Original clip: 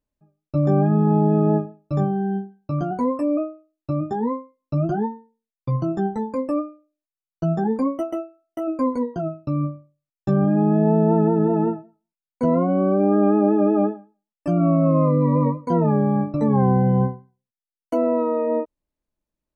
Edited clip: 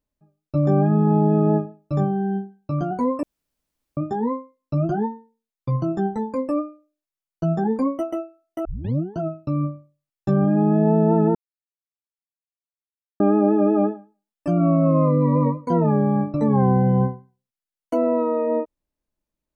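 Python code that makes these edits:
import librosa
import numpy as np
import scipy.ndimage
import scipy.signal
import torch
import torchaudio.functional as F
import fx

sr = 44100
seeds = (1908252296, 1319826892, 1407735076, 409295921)

y = fx.edit(x, sr, fx.room_tone_fill(start_s=3.23, length_s=0.74),
    fx.tape_start(start_s=8.65, length_s=0.54),
    fx.silence(start_s=11.35, length_s=1.85), tone=tone)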